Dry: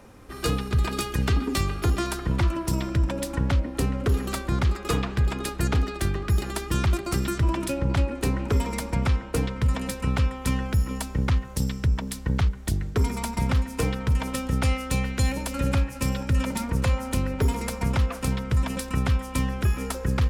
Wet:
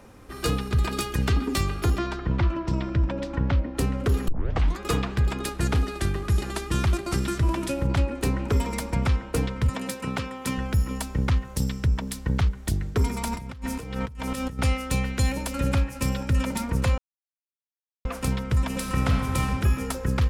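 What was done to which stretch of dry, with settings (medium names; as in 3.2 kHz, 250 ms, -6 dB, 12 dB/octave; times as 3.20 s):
1.98–3.78 s: distance through air 170 m
4.28 s: tape start 0.52 s
5.50–7.87 s: CVSD coder 64 kbps
9.69–10.58 s: high-pass 170 Hz
13.27–14.59 s: compressor with a negative ratio -33 dBFS
16.98–18.05 s: mute
18.67–19.41 s: reverb throw, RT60 2 s, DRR 1 dB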